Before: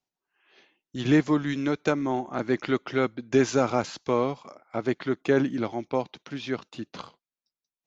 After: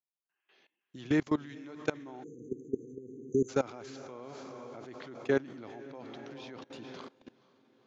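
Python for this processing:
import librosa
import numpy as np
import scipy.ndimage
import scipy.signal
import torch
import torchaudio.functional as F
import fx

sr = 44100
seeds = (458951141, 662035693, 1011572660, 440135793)

p1 = scipy.signal.sosfilt(scipy.signal.butter(2, 90.0, 'highpass', fs=sr, output='sos'), x)
p2 = p1 + fx.echo_diffused(p1, sr, ms=466, feedback_pct=46, wet_db=-9.5, dry=0)
p3 = fx.dynamic_eq(p2, sr, hz=190.0, q=3.4, threshold_db=-45.0, ratio=4.0, max_db=-5)
p4 = fx.level_steps(p3, sr, step_db=21)
p5 = fx.spec_erase(p4, sr, start_s=2.23, length_s=1.26, low_hz=500.0, high_hz=6000.0)
y = p5 * librosa.db_to_amplitude(-3.5)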